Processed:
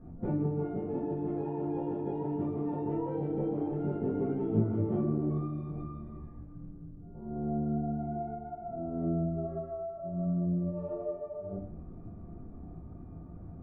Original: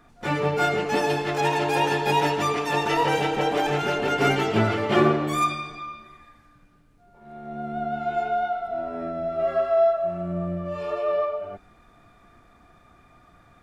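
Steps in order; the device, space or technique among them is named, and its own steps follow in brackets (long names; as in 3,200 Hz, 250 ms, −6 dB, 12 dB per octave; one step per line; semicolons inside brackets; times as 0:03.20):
television next door (downward compressor 5 to 1, threshold −37 dBFS, peak gain reduction 20 dB; low-pass filter 270 Hz 12 dB per octave; convolution reverb RT60 0.45 s, pre-delay 6 ms, DRR −5.5 dB)
level +8 dB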